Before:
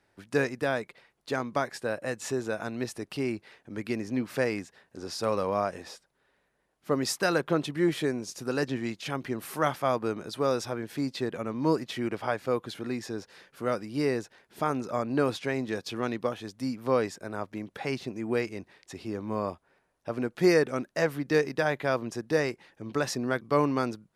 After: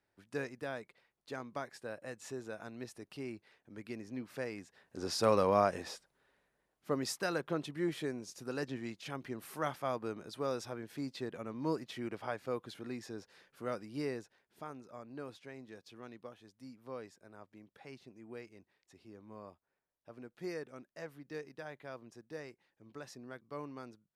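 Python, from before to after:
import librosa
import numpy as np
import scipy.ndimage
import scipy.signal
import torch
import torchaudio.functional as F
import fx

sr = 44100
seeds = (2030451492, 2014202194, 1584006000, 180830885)

y = fx.gain(x, sr, db=fx.line((4.56, -12.5), (5.04, 0.0), (5.8, 0.0), (7.3, -9.5), (13.98, -9.5), (14.82, -19.5)))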